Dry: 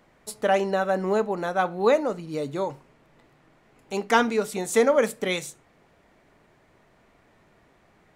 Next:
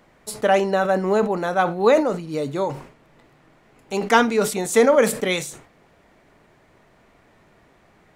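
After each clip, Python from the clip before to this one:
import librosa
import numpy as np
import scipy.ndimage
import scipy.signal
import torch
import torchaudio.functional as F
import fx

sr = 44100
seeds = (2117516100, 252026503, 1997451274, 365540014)

y = fx.sustainer(x, sr, db_per_s=110.0)
y = F.gain(torch.from_numpy(y), 4.0).numpy()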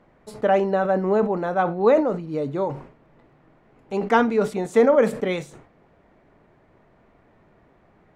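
y = fx.lowpass(x, sr, hz=1100.0, slope=6)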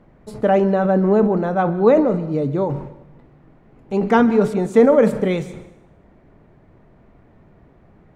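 y = fx.low_shelf(x, sr, hz=320.0, db=11.0)
y = fx.rev_plate(y, sr, seeds[0], rt60_s=0.85, hf_ratio=0.95, predelay_ms=115, drr_db=15.0)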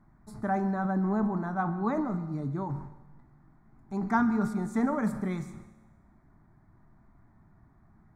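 y = fx.fixed_phaser(x, sr, hz=1200.0, stages=4)
y = fx.comb_fb(y, sr, f0_hz=110.0, decay_s=1.4, harmonics='all', damping=0.0, mix_pct=60)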